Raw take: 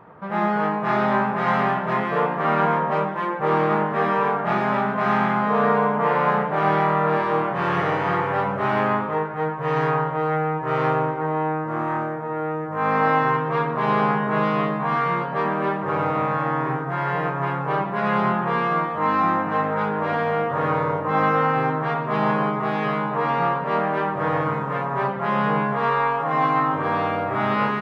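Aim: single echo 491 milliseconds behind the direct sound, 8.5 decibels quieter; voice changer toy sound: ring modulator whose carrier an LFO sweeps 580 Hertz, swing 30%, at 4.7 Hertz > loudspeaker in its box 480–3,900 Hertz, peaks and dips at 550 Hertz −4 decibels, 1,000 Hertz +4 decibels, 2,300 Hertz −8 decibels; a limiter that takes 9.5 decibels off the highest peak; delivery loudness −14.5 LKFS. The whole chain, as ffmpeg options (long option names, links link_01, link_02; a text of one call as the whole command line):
ffmpeg -i in.wav -af "alimiter=limit=-16.5dB:level=0:latency=1,aecho=1:1:491:0.376,aeval=exprs='val(0)*sin(2*PI*580*n/s+580*0.3/4.7*sin(2*PI*4.7*n/s))':channel_layout=same,highpass=480,equalizer=frequency=550:width_type=q:width=4:gain=-4,equalizer=frequency=1000:width_type=q:width=4:gain=4,equalizer=frequency=2300:width_type=q:width=4:gain=-8,lowpass=frequency=3900:width=0.5412,lowpass=frequency=3900:width=1.3066,volume=14.5dB" out.wav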